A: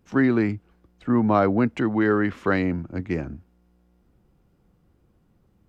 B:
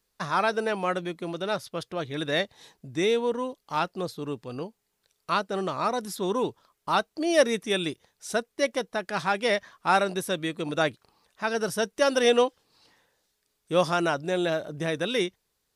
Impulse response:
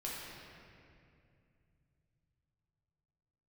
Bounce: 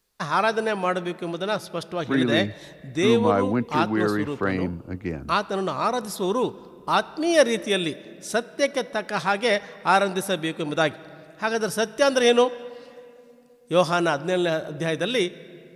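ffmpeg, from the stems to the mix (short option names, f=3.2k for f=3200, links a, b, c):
-filter_complex "[0:a]adelay=1950,volume=-3dB[a];[1:a]volume=2.5dB,asplit=2[b][c];[c]volume=-17dB[d];[2:a]atrim=start_sample=2205[e];[d][e]afir=irnorm=-1:irlink=0[f];[a][b][f]amix=inputs=3:normalize=0"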